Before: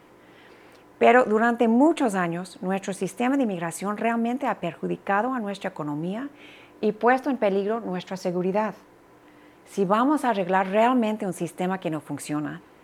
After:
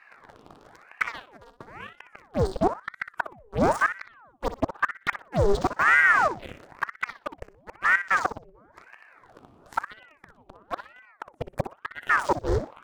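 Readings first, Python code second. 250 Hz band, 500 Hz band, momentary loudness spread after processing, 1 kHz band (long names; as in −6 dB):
−11.5 dB, −6.5 dB, 22 LU, −2.5 dB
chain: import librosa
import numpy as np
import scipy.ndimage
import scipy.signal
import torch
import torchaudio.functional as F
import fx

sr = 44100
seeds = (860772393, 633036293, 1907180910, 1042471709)

p1 = fx.riaa(x, sr, side='playback')
p2 = fx.gate_flip(p1, sr, shuts_db=-13.0, range_db=-30)
p3 = fx.fuzz(p2, sr, gain_db=41.0, gate_db=-39.0)
p4 = p2 + (p3 * 10.0 ** (-7.5 / 20.0))
p5 = fx.env_phaser(p4, sr, low_hz=250.0, high_hz=2500.0, full_db=-20.0)
p6 = p5 + fx.echo_feedback(p5, sr, ms=61, feedback_pct=23, wet_db=-11.5, dry=0)
y = fx.ring_lfo(p6, sr, carrier_hz=980.0, swing_pct=80, hz=1.0)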